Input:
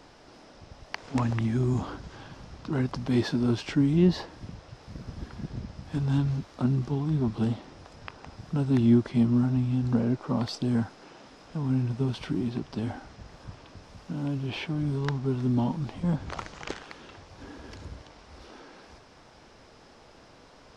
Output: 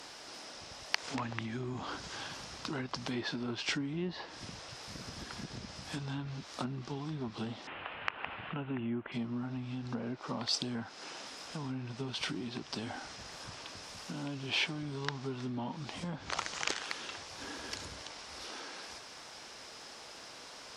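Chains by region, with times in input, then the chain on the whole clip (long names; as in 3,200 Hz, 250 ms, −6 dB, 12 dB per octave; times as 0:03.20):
0:07.67–0:09.12: elliptic low-pass filter 2,900 Hz, stop band 50 dB + one half of a high-frequency compander encoder only
whole clip: treble cut that deepens with the level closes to 2,600 Hz, closed at −20.5 dBFS; downward compressor 2.5 to 1, threshold −35 dBFS; spectral tilt +3.5 dB per octave; level +3 dB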